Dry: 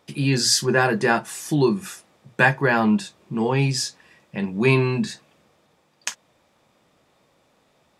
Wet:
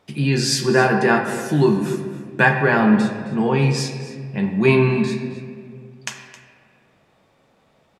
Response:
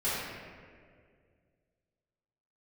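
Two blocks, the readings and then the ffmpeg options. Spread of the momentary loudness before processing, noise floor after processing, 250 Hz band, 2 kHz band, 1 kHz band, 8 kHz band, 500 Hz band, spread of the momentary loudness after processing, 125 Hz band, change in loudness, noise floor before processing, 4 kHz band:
14 LU, -60 dBFS, +4.0 dB, +2.5 dB, +3.0 dB, -3.0 dB, +4.0 dB, 17 LU, +3.5 dB, +3.0 dB, -64 dBFS, -1.5 dB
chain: -filter_complex "[0:a]bass=f=250:g=2,treble=f=4000:g=-5,aecho=1:1:266:0.141,asplit=2[s0][s1];[1:a]atrim=start_sample=2205[s2];[s1][s2]afir=irnorm=-1:irlink=0,volume=0.237[s3];[s0][s3]amix=inputs=2:normalize=0"

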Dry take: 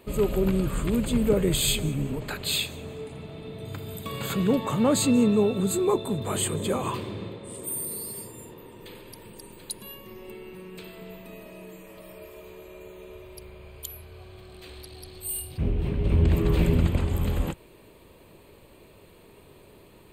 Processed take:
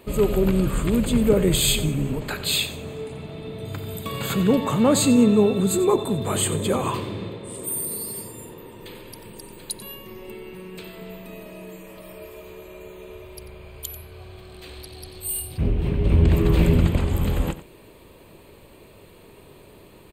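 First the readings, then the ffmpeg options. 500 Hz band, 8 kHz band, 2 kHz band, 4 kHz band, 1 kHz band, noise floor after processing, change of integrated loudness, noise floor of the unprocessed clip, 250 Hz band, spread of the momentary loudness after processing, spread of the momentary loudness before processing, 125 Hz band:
+4.0 dB, +4.0 dB, +4.0 dB, +4.0 dB, +4.0 dB, -49 dBFS, +4.0 dB, -53 dBFS, +4.5 dB, 22 LU, 22 LU, +4.0 dB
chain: -af "aecho=1:1:91:0.188,volume=1.58"

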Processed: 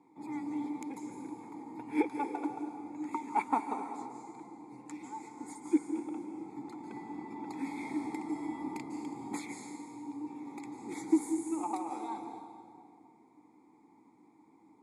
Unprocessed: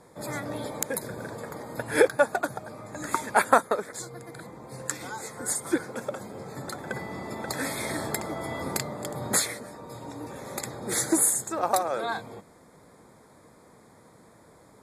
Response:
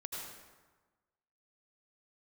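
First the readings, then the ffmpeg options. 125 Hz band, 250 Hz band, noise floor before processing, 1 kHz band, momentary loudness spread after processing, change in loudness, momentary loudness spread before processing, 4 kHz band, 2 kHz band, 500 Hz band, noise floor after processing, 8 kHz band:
-16.5 dB, +0.5 dB, -55 dBFS, -7.5 dB, 14 LU, -9.0 dB, 18 LU, -20.5 dB, -17.0 dB, -14.5 dB, -63 dBFS, -22.5 dB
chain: -filter_complex "[0:a]asplit=3[s0][s1][s2];[s0]bandpass=f=300:t=q:w=8,volume=1[s3];[s1]bandpass=f=870:t=q:w=8,volume=0.501[s4];[s2]bandpass=f=2240:t=q:w=8,volume=0.355[s5];[s3][s4][s5]amix=inputs=3:normalize=0,asplit=2[s6][s7];[s7]highshelf=f=4600:t=q:w=1.5:g=9.5[s8];[1:a]atrim=start_sample=2205,asetrate=23814,aresample=44100[s9];[s8][s9]afir=irnorm=-1:irlink=0,volume=0.531[s10];[s6][s10]amix=inputs=2:normalize=0"

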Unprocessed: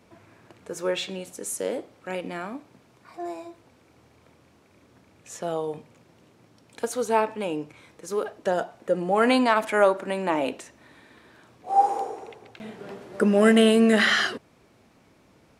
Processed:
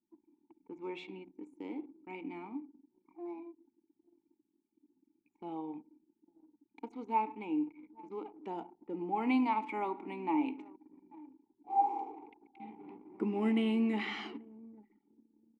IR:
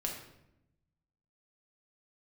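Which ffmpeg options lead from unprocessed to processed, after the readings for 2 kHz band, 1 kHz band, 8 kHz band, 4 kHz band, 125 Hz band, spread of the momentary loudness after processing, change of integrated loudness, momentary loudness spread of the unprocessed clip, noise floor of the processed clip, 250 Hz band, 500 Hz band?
-18.0 dB, -9.0 dB, under -35 dB, -19.0 dB, -13.0 dB, 22 LU, -12.0 dB, 22 LU, -82 dBFS, -9.0 dB, -18.5 dB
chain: -filter_complex "[0:a]asplit=3[s0][s1][s2];[s0]bandpass=f=300:t=q:w=8,volume=1[s3];[s1]bandpass=f=870:t=q:w=8,volume=0.501[s4];[s2]bandpass=f=2240:t=q:w=8,volume=0.355[s5];[s3][s4][s5]amix=inputs=3:normalize=0,asplit=2[s6][s7];[s7]adelay=836,lowpass=f=1400:p=1,volume=0.0794,asplit=2[s8][s9];[s9]adelay=836,lowpass=f=1400:p=1,volume=0.21[s10];[s6][s8][s10]amix=inputs=3:normalize=0,asplit=2[s11][s12];[1:a]atrim=start_sample=2205[s13];[s12][s13]afir=irnorm=-1:irlink=0,volume=0.211[s14];[s11][s14]amix=inputs=2:normalize=0,anlmdn=0.000631"

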